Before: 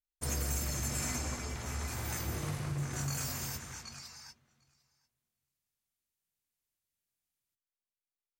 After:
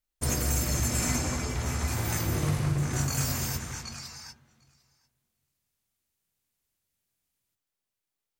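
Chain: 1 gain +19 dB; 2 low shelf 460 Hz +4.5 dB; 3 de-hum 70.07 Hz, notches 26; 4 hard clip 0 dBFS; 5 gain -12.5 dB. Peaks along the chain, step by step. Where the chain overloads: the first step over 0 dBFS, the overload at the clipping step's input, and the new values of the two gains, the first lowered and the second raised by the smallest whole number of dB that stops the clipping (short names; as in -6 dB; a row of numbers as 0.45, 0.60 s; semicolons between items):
-2.5, -0.5, -2.0, -2.0, -14.5 dBFS; no overload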